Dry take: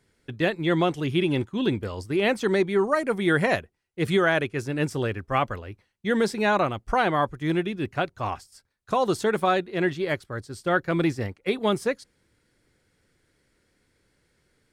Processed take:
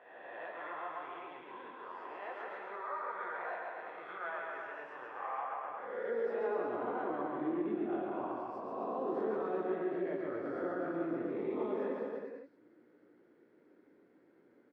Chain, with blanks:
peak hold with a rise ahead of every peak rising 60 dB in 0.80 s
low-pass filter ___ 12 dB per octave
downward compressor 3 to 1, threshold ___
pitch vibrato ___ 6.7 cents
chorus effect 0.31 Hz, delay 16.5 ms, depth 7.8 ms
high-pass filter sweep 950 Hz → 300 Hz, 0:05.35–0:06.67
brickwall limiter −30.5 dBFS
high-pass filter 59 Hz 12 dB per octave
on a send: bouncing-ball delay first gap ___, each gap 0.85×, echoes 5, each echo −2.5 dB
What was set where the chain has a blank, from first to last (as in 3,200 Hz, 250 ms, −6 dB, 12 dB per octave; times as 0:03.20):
1,200 Hz, −41 dBFS, 4.7 Hz, 140 ms